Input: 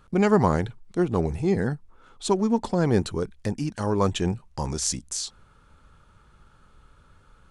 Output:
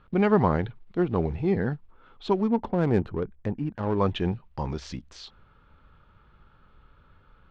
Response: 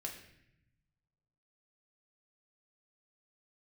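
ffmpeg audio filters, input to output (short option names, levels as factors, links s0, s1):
-filter_complex "[0:a]acrusher=bits=8:mode=log:mix=0:aa=0.000001,lowpass=f=3600:w=0.5412,lowpass=f=3600:w=1.3066,asettb=1/sr,asplit=3[s0][s1][s2];[s0]atrim=end=2.484[s3];[s1]atrim=start=2.48:end=3.98,asetpts=PTS-STARTPTS,afade=t=in:d=0.004:c=qsin,afade=t=out:st=1.496:d=0.004:c=qsin,adynamicsmooth=sensitivity=2:basefreq=1300[s4];[s2]atrim=start=3.976[s5];[s3][s4]acrossfade=d=0.004:c1=hsin:c2=qsin[s6];[s6][s5]acrossfade=d=0.004:c1=qsin:c2=hsin,volume=0.841"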